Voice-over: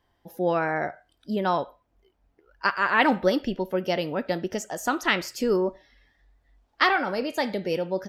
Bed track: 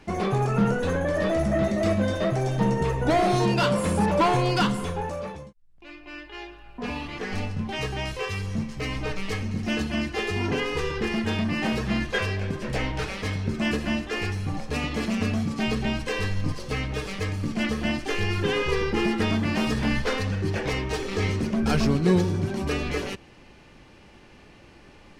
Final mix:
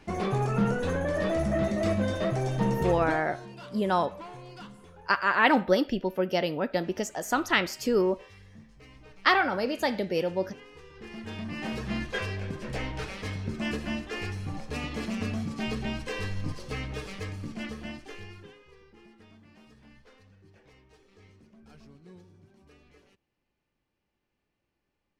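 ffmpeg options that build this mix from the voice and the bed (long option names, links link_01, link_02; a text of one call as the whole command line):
ffmpeg -i stem1.wav -i stem2.wav -filter_complex "[0:a]adelay=2450,volume=-1dB[link_01];[1:a]volume=13dB,afade=type=out:start_time=2.91:duration=0.32:silence=0.112202,afade=type=in:start_time=10.9:duration=1.05:silence=0.149624,afade=type=out:start_time=16.92:duration=1.66:silence=0.0562341[link_02];[link_01][link_02]amix=inputs=2:normalize=0" out.wav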